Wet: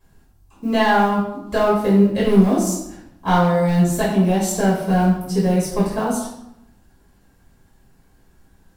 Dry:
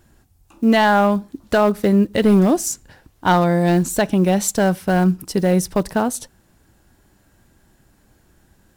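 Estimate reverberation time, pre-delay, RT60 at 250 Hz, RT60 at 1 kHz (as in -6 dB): 0.85 s, 3 ms, 1.0 s, 0.85 s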